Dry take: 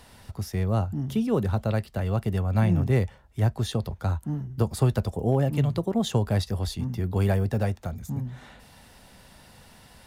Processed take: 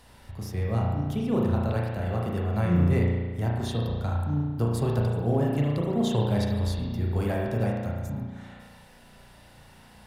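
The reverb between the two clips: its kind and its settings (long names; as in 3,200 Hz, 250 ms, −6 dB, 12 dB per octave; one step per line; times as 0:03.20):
spring reverb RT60 1.4 s, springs 34 ms, chirp 45 ms, DRR −2.5 dB
level −4.5 dB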